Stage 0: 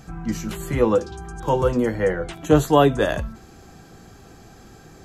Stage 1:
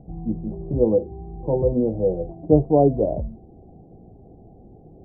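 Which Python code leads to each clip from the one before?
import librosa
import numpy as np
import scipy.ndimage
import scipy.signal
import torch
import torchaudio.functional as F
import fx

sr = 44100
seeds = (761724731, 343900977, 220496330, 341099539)

y = scipy.signal.sosfilt(scipy.signal.butter(8, 740.0, 'lowpass', fs=sr, output='sos'), x)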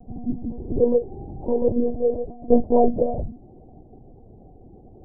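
y = fx.lpc_monotone(x, sr, seeds[0], pitch_hz=240.0, order=8)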